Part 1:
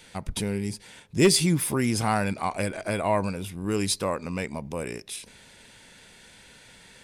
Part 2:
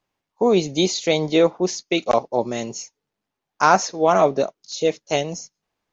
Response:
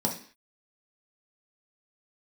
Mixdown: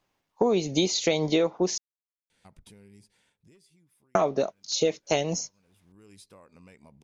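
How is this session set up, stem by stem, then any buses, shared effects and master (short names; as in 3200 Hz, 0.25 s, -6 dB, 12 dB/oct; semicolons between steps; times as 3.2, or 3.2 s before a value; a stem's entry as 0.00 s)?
-17.0 dB, 2.30 s, no send, compressor 12:1, threshold -31 dBFS, peak gain reduction 17 dB; auto duck -18 dB, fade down 1.20 s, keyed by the second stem
+3.0 dB, 0.00 s, muted 1.78–4.15, no send, dry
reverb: off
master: compressor 8:1, threshold -20 dBFS, peak gain reduction 12.5 dB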